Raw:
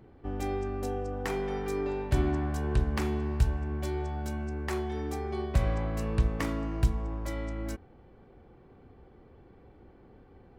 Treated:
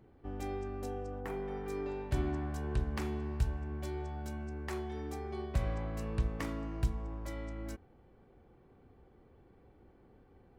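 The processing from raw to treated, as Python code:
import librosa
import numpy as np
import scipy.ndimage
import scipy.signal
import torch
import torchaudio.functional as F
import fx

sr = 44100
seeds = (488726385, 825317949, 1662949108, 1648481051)

y = fx.peak_eq(x, sr, hz=5400.0, db=fx.line((1.19, -14.5), (1.69, -6.5)), octaves=2.0, at=(1.19, 1.69), fade=0.02)
y = y * 10.0 ** (-6.5 / 20.0)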